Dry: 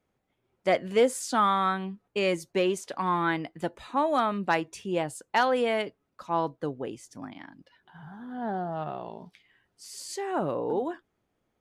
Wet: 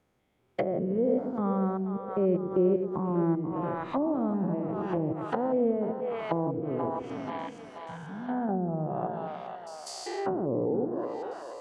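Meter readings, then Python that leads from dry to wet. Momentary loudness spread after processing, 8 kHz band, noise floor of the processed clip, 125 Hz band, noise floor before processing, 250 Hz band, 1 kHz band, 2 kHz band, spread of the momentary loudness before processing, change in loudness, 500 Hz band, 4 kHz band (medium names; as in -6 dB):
12 LU, under -10 dB, -49 dBFS, +5.5 dB, -78 dBFS, +4.5 dB, -6.0 dB, -12.5 dB, 18 LU, -1.5 dB, 0.0 dB, under -10 dB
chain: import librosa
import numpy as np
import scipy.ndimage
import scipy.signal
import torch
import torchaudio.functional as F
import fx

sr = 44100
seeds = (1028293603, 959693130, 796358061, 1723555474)

y = fx.spec_steps(x, sr, hold_ms=200)
y = fx.echo_split(y, sr, split_hz=470.0, low_ms=118, high_ms=482, feedback_pct=52, wet_db=-8)
y = fx.env_lowpass_down(y, sr, base_hz=430.0, full_db=-29.0)
y = F.gain(torch.from_numpy(y), 6.0).numpy()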